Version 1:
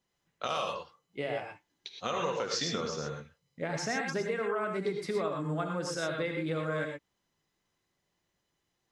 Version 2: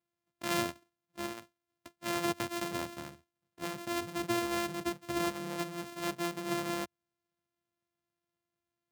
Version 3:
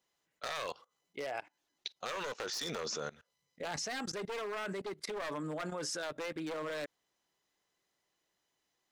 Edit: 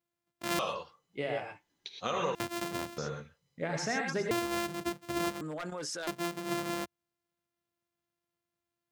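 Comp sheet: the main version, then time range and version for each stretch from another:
2
0:00.59–0:02.35: punch in from 1
0:02.98–0:04.31: punch in from 1
0:05.41–0:06.07: punch in from 3

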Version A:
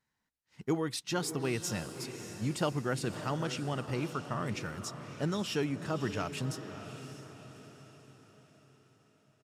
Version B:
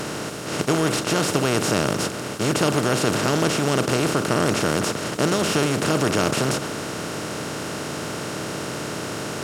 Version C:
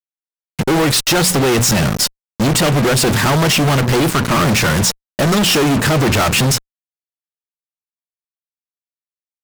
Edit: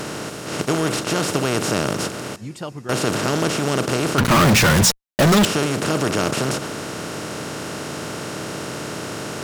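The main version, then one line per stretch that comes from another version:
B
0:02.36–0:02.89: punch in from A
0:04.18–0:05.45: punch in from C

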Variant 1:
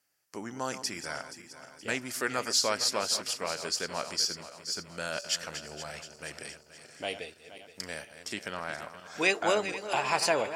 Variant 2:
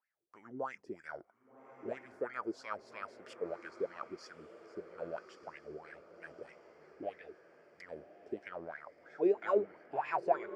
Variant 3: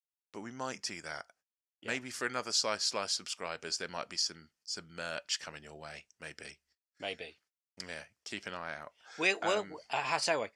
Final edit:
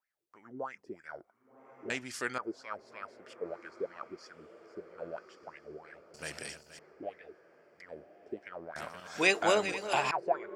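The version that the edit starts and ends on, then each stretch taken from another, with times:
2
0:01.90–0:02.38: punch in from 3
0:06.14–0:06.79: punch in from 1
0:08.76–0:10.11: punch in from 1

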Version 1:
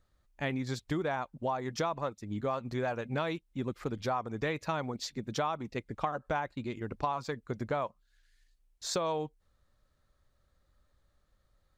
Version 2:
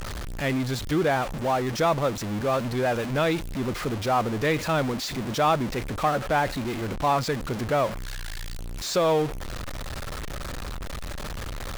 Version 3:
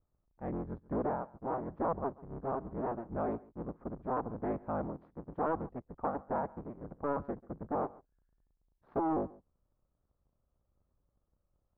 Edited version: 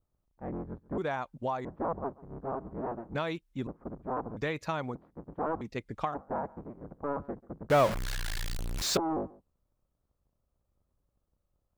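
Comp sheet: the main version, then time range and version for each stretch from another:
3
0:00.98–0:01.65: punch in from 1
0:03.15–0:03.67: punch in from 1
0:04.37–0:04.95: punch in from 1
0:05.61–0:06.14: punch in from 1
0:07.70–0:08.97: punch in from 2

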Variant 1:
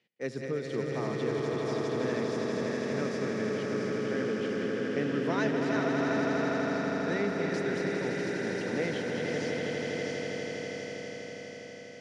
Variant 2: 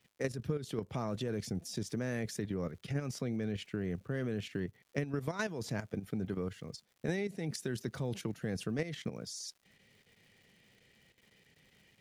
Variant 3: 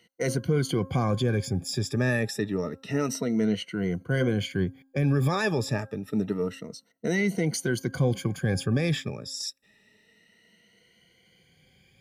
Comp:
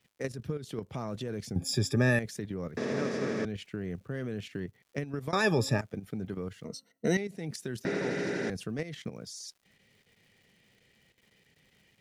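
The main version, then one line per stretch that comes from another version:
2
0:01.56–0:02.19: punch in from 3
0:02.77–0:03.45: punch in from 1
0:05.33–0:05.81: punch in from 3
0:06.65–0:07.17: punch in from 3
0:07.85–0:08.50: punch in from 1

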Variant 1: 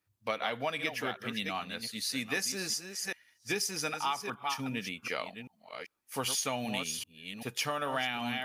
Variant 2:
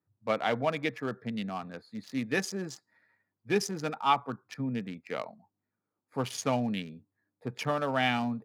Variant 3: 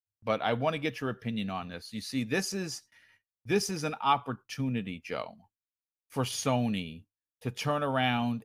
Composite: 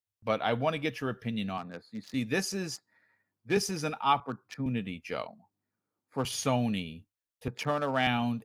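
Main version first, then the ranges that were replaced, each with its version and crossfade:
3
0:01.58–0:02.14: punch in from 2
0:02.76–0:03.57: punch in from 2
0:04.20–0:04.66: punch in from 2
0:05.27–0:06.25: punch in from 2
0:07.48–0:08.07: punch in from 2
not used: 1

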